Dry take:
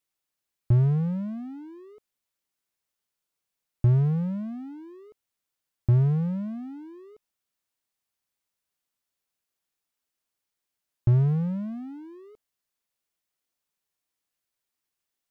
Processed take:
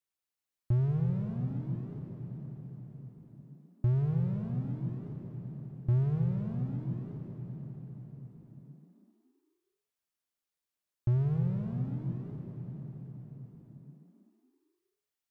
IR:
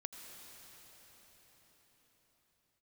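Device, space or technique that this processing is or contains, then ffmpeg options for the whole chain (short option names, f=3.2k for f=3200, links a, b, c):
cathedral: -filter_complex "[1:a]atrim=start_sample=2205[a];[0:a][a]afir=irnorm=-1:irlink=0,volume=-3dB"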